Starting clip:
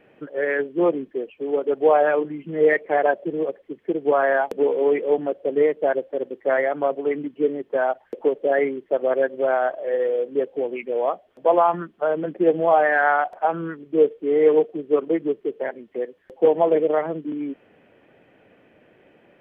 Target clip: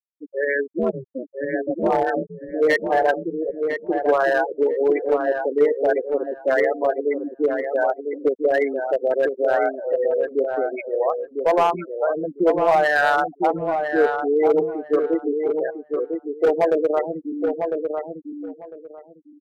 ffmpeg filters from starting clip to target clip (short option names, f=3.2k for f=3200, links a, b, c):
-filter_complex "[0:a]bandreject=f=233.4:t=h:w=4,bandreject=f=466.8:t=h:w=4,bandreject=f=700.2:t=h:w=4,bandreject=f=933.6:t=h:w=4,bandreject=f=1.167k:t=h:w=4,bandreject=f=1.4004k:t=h:w=4,bandreject=f=1.6338k:t=h:w=4,asplit=3[a][b][c];[a]afade=t=out:st=0.78:d=0.02[d];[b]aeval=exprs='val(0)*sin(2*PI*130*n/s)':c=same,afade=t=in:st=0.78:d=0.02,afade=t=out:st=2.52:d=0.02[e];[c]afade=t=in:st=2.52:d=0.02[f];[d][e][f]amix=inputs=3:normalize=0,highshelf=f=2.1k:g=6,afftfilt=real='re*gte(hypot(re,im),0.141)':imag='im*gte(hypot(re,im),0.141)':win_size=1024:overlap=0.75,asoftclip=type=hard:threshold=-12dB,asplit=2[g][h];[h]adelay=1002,lowpass=f=1.6k:p=1,volume=-5dB,asplit=2[i][j];[j]adelay=1002,lowpass=f=1.6k:p=1,volume=0.2,asplit=2[k][l];[l]adelay=1002,lowpass=f=1.6k:p=1,volume=0.2[m];[i][k][m]amix=inputs=3:normalize=0[n];[g][n]amix=inputs=2:normalize=0"